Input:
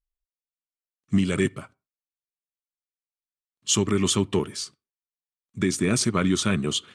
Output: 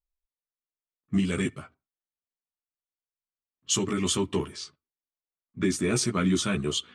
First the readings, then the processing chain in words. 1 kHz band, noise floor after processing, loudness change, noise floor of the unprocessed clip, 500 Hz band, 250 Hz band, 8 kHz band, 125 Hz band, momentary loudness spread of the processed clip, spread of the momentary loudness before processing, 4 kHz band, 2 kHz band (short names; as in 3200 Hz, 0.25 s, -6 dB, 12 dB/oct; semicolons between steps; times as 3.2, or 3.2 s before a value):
-3.0 dB, under -85 dBFS, -3.0 dB, under -85 dBFS, -3.5 dB, -3.0 dB, -3.5 dB, -4.0 dB, 14 LU, 11 LU, -3.0 dB, -3.5 dB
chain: low-pass opened by the level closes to 1300 Hz, open at -21.5 dBFS; chorus voices 6, 0.37 Hz, delay 14 ms, depth 2.4 ms